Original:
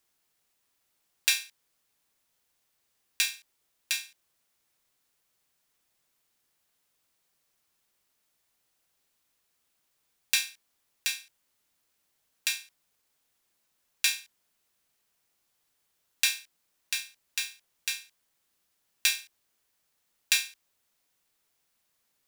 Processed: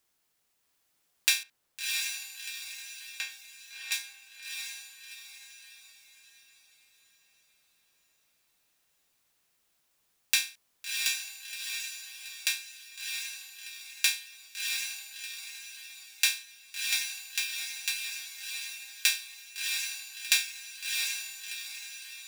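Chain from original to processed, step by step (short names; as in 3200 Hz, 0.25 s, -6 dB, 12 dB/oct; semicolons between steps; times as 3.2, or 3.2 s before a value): 1.43–3.92 LPF 1300 Hz 6 dB/oct; diffused feedback echo 0.688 s, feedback 45%, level -3 dB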